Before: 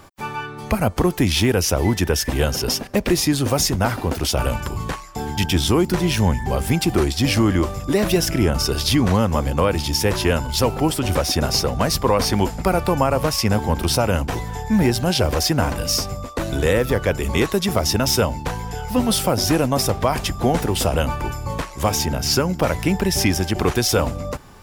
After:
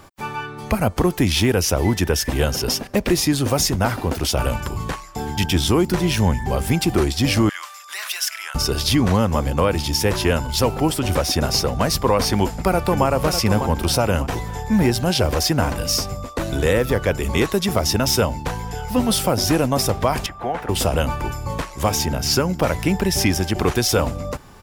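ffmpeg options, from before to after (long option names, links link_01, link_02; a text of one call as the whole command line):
ffmpeg -i in.wav -filter_complex "[0:a]asettb=1/sr,asplit=3[link_01][link_02][link_03];[link_01]atrim=end=7.494[link_04];[link_02]atrim=start=7.49:end=8.55,asetpts=PTS-STARTPTS,afade=type=in:duration=0.004:curve=qsin,afade=type=out:start_time=1.056:duration=0.004:curve=qsin,highpass=frequency=1200:width=0.5412,highpass=frequency=1200:width=1.3066[link_05];[link_03]atrim=start=8.546[link_06];[link_04][link_05]acrossfade=duration=0.004:curve1=hsin:curve2=qsin[link_07];[link_07][link_06]acrossfade=duration=0.004:curve1=qsin:curve2=hsin,asplit=2[link_08][link_09];[link_09]afade=type=in:start_time=12.31:duration=0.01,afade=type=out:start_time=13.06:duration=0.01,aecho=0:1:600|1200|1800|2400:0.398107|0.139338|0.0487681|0.0170688[link_10];[link_08][link_10]amix=inputs=2:normalize=0,asettb=1/sr,asplit=3[link_11][link_12][link_13];[link_11]atrim=end=20.264[link_14];[link_12]atrim=start=20.26:end=20.69,asetpts=PTS-STARTPTS,afade=type=in:duration=0.004:curve=qsin,afade=type=out:start_time=0.426:duration=0.004:curve=qsin,acrossover=split=560 2600:gain=0.2 1 0.112[link_15][link_16][link_17];[link_15][link_16][link_17]amix=inputs=3:normalize=0[link_18];[link_13]atrim=start=20.686[link_19];[link_14][link_18]acrossfade=duration=0.004:curve1=hsin:curve2=qsin[link_20];[link_20][link_19]acrossfade=duration=0.004:curve1=qsin:curve2=hsin" out.wav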